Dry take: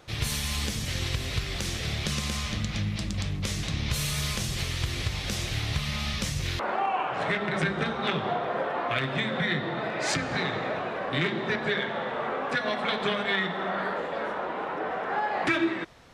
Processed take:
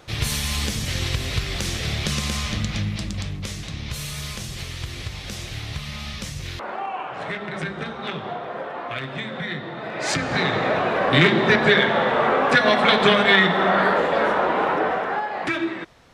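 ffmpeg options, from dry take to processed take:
-af "volume=8.41,afade=t=out:st=2.64:d=0.98:silence=0.446684,afade=t=in:st=9.8:d=0.37:silence=0.473151,afade=t=in:st=10.17:d=0.94:silence=0.446684,afade=t=out:st=14.69:d=0.57:silence=0.281838"

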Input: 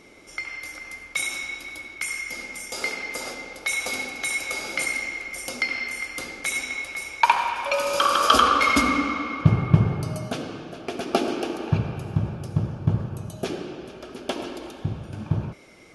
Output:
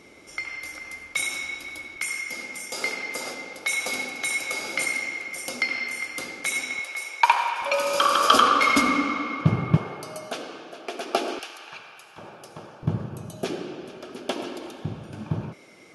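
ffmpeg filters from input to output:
-af "asetnsamples=n=441:p=0,asendcmd='1.96 highpass f 120;6.79 highpass f 460;7.62 highpass f 140;9.77 highpass f 430;11.39 highpass f 1400;12.18 highpass f 560;12.83 highpass f 140',highpass=51"

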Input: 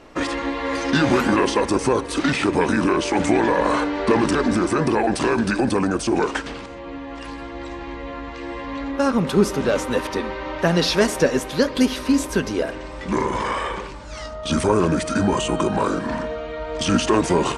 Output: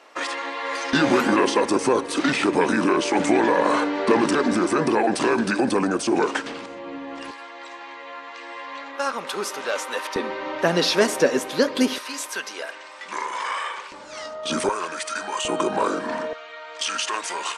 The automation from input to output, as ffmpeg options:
-af "asetnsamples=n=441:p=0,asendcmd='0.93 highpass f 210;7.31 highpass f 770;10.16 highpass f 250;11.98 highpass f 1000;13.92 highpass f 320;14.69 highpass f 1000;15.45 highpass f 330;16.33 highpass f 1200',highpass=660"

